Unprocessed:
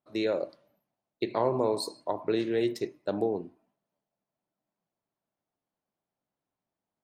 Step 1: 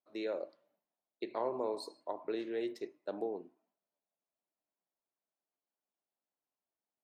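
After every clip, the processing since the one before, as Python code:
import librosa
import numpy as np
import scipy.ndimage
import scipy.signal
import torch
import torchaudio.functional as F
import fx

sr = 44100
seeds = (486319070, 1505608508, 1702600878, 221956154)

y = scipy.signal.sosfilt(scipy.signal.butter(2, 290.0, 'highpass', fs=sr, output='sos'), x)
y = fx.high_shelf(y, sr, hz=4900.0, db=-8.5)
y = y * 10.0 ** (-8.0 / 20.0)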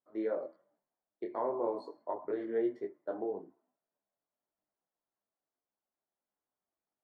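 y = scipy.signal.savgol_filter(x, 41, 4, mode='constant')
y = fx.detune_double(y, sr, cents=15)
y = y * 10.0 ** (6.0 / 20.0)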